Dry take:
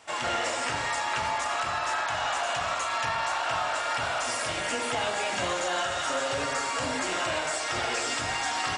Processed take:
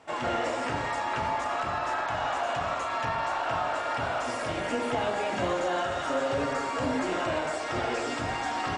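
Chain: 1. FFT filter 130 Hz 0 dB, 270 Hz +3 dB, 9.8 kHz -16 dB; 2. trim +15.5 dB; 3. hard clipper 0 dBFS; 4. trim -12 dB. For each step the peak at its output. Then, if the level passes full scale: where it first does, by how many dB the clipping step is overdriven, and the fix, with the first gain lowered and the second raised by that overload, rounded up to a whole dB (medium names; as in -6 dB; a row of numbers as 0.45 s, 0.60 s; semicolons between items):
-19.5 dBFS, -4.0 dBFS, -4.0 dBFS, -16.0 dBFS; nothing clips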